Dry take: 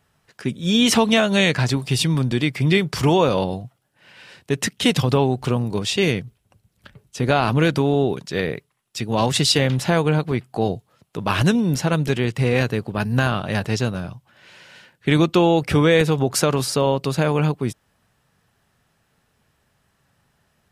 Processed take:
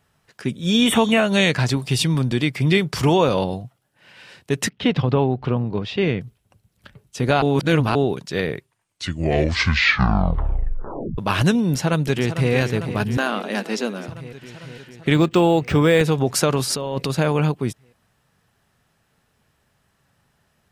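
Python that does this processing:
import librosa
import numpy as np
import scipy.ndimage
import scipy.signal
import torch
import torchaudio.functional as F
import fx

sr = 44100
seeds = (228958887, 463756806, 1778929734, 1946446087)

y = fx.spec_repair(x, sr, seeds[0], start_s=0.82, length_s=0.42, low_hz=3100.0, high_hz=7600.0, source='both')
y = fx.air_absorb(y, sr, metres=310.0, at=(4.69, 6.21))
y = fx.echo_throw(y, sr, start_s=11.72, length_s=0.8, ms=450, feedback_pct=75, wet_db=-10.0)
y = fx.ellip_highpass(y, sr, hz=200.0, order=4, stop_db=40, at=(13.17, 14.08))
y = fx.resample_linear(y, sr, factor=4, at=(15.14, 16.01))
y = fx.over_compress(y, sr, threshold_db=-24.0, ratio=-1.0, at=(16.7, 17.11))
y = fx.edit(y, sr, fx.reverse_span(start_s=7.42, length_s=0.53),
    fx.tape_stop(start_s=8.45, length_s=2.73), tone=tone)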